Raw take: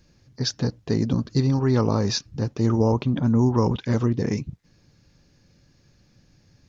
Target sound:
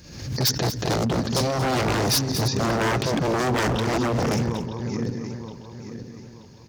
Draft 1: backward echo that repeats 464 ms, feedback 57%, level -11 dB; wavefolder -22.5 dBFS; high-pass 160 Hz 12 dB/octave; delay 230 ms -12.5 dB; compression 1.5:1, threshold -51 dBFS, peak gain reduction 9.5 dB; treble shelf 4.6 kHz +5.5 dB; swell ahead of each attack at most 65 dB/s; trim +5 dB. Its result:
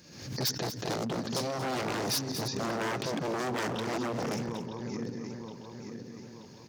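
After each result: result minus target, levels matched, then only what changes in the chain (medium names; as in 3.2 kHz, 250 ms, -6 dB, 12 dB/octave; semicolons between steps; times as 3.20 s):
compression: peak gain reduction +9.5 dB; 125 Hz band -3.5 dB
remove: compression 1.5:1, threshold -51 dBFS, peak gain reduction 9.5 dB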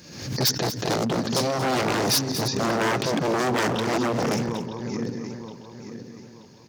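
125 Hz band -4.5 dB
change: high-pass 47 Hz 12 dB/octave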